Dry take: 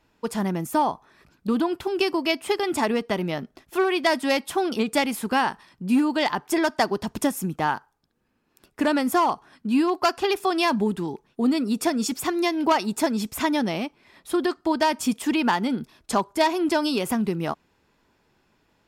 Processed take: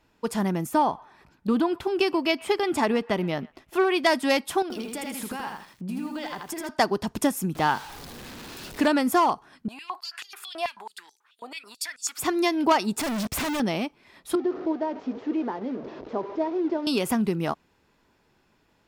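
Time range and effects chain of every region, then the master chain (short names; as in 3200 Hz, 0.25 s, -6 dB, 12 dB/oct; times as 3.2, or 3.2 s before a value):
0.69–3.94 high shelf 5000 Hz -5 dB + band-limited delay 0.122 s, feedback 34%, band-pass 1600 Hz, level -22 dB
4.62–6.69 compressor 8:1, threshold -31 dBFS + lo-fi delay 81 ms, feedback 35%, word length 9-bit, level -3 dB
7.55–8.88 zero-crossing step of -36 dBFS + bell 4100 Hz +5 dB 0.97 oct
9.68–12.18 bell 5700 Hz -6 dB 0.38 oct + compressor 16:1, threshold -28 dBFS + stepped high-pass 9.2 Hz 710–6300 Hz
12.99–13.6 high shelf 5300 Hz -9 dB + sample leveller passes 5 + hard clip -27 dBFS
14.35–16.87 delta modulation 32 kbps, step -23.5 dBFS + band-pass 420 Hz, Q 2 + doubler 19 ms -14 dB
whole clip: dry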